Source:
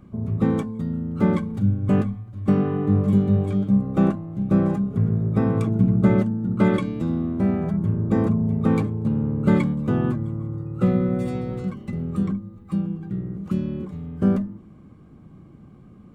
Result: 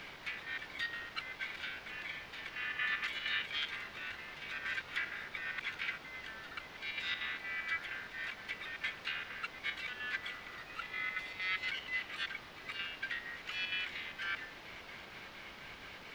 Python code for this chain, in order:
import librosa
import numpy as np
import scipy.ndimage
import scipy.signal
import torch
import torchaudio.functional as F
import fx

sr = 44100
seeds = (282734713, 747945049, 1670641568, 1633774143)

y = scipy.signal.sosfilt(scipy.signal.butter(8, 1700.0, 'highpass', fs=sr, output='sos'), x)
y = fx.high_shelf(y, sr, hz=2900.0, db=8.5)
y = fx.over_compress(y, sr, threshold_db=-54.0, ratio=-1.0)
y = fx.chopper(y, sr, hz=4.3, depth_pct=60, duty_pct=70)
y = fx.quant_dither(y, sr, seeds[0], bits=10, dither='triangular')
y = fx.air_absorb(y, sr, metres=310.0)
y = F.gain(torch.from_numpy(y), 17.5).numpy()